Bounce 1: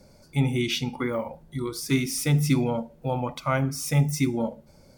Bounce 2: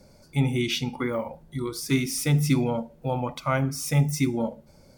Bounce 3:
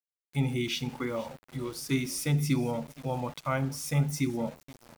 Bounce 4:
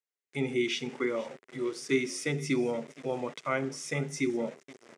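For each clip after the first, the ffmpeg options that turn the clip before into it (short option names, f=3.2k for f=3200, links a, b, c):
-af anull
-af "aecho=1:1:473|946|1419:0.1|0.035|0.0123,aeval=exprs='val(0)*gte(abs(val(0)),0.01)':c=same,volume=-5dB"
-af "highpass=240,equalizer=f=400:t=q:w=4:g=10,equalizer=f=870:t=q:w=4:g=-6,equalizer=f=2k:t=q:w=4:g=6,equalizer=f=4.3k:t=q:w=4:g=-5,lowpass=f=8.3k:w=0.5412,lowpass=f=8.3k:w=1.3066"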